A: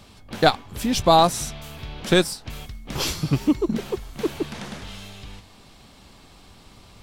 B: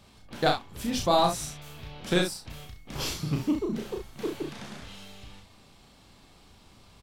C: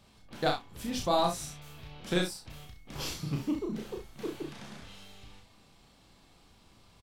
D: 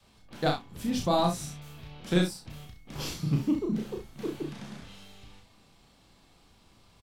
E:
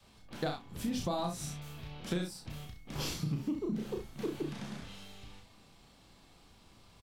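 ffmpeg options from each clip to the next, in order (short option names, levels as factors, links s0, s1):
-af "aecho=1:1:34|66:0.668|0.398,volume=0.376"
-filter_complex "[0:a]asplit=2[s0][s1];[s1]adelay=28,volume=0.251[s2];[s0][s2]amix=inputs=2:normalize=0,volume=0.562"
-af "adynamicequalizer=threshold=0.00447:dfrequency=180:dqfactor=0.8:tfrequency=180:tqfactor=0.8:attack=5:release=100:ratio=0.375:range=4:mode=boostabove:tftype=bell"
-af "acompressor=threshold=0.0282:ratio=8"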